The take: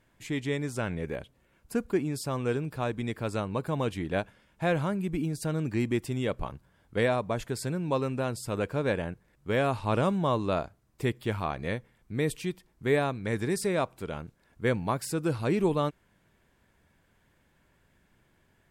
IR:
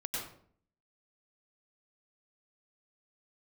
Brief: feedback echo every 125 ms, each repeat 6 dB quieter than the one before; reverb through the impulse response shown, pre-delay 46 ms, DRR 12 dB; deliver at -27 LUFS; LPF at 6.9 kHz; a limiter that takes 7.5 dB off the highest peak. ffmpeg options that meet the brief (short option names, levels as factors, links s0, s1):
-filter_complex "[0:a]lowpass=6900,alimiter=limit=0.0841:level=0:latency=1,aecho=1:1:125|250|375|500|625|750:0.501|0.251|0.125|0.0626|0.0313|0.0157,asplit=2[s0][s1];[1:a]atrim=start_sample=2205,adelay=46[s2];[s1][s2]afir=irnorm=-1:irlink=0,volume=0.188[s3];[s0][s3]amix=inputs=2:normalize=0,volume=1.68"